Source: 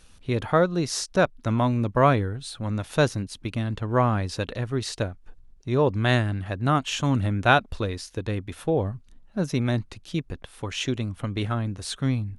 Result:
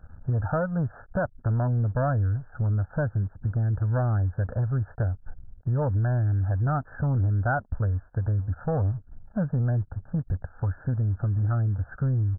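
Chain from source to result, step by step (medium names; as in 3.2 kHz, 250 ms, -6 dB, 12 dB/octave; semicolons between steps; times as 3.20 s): peaking EQ 93 Hz +10.5 dB 1 oct; comb 1.4 ms, depth 91%; compression 3:1, threshold -24 dBFS, peak gain reduction 12 dB; waveshaping leveller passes 2; brick-wall FIR low-pass 1.8 kHz; trim -6 dB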